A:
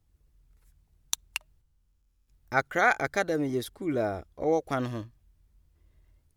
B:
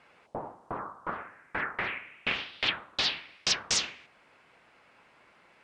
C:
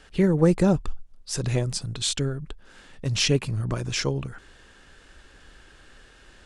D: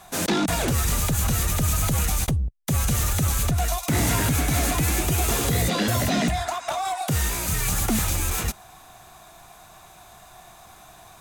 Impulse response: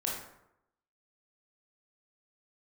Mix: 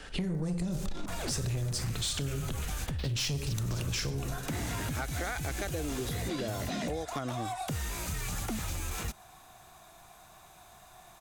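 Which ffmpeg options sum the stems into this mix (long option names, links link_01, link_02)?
-filter_complex "[0:a]acompressor=mode=upward:threshold=-34dB:ratio=2.5,adelay=2450,volume=2dB[link_01];[1:a]acrusher=bits=3:mode=log:mix=0:aa=0.000001,volume=-9.5dB,asplit=2[link_02][link_03];[link_03]volume=-14.5dB[link_04];[2:a]volume=3dB,asplit=3[link_05][link_06][link_07];[link_06]volume=-7dB[link_08];[3:a]acrossover=split=7300[link_09][link_10];[link_10]acompressor=threshold=-33dB:ratio=4:attack=1:release=60[link_11];[link_09][link_11]amix=inputs=2:normalize=0,adelay=600,volume=-7dB[link_12];[link_07]apad=whole_len=248693[link_13];[link_02][link_13]sidechaingate=range=-33dB:threshold=-39dB:ratio=16:detection=peak[link_14];[4:a]atrim=start_sample=2205[link_15];[link_04][link_08]amix=inputs=2:normalize=0[link_16];[link_16][link_15]afir=irnorm=-1:irlink=0[link_17];[link_01][link_14][link_05][link_12][link_17]amix=inputs=5:normalize=0,acrossover=split=160|3000[link_18][link_19][link_20];[link_19]acompressor=threshold=-26dB:ratio=6[link_21];[link_18][link_21][link_20]amix=inputs=3:normalize=0,asoftclip=type=tanh:threshold=-16dB,acompressor=threshold=-31dB:ratio=6"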